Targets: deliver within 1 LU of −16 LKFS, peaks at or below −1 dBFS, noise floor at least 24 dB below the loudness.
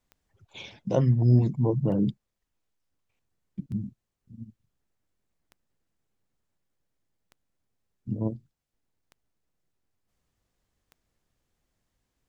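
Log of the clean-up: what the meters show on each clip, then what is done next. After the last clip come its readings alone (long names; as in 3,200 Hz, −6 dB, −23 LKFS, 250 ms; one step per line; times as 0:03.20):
number of clicks 7; integrated loudness −26.0 LKFS; sample peak −9.0 dBFS; target loudness −16.0 LKFS
→ click removal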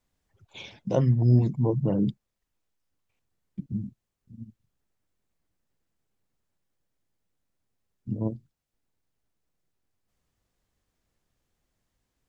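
number of clicks 0; integrated loudness −26.0 LKFS; sample peak −9.0 dBFS; target loudness −16.0 LKFS
→ level +10 dB
brickwall limiter −1 dBFS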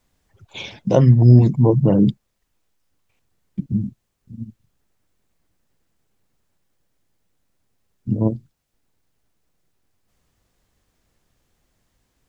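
integrated loudness −16.5 LKFS; sample peak −1.0 dBFS; background noise floor −73 dBFS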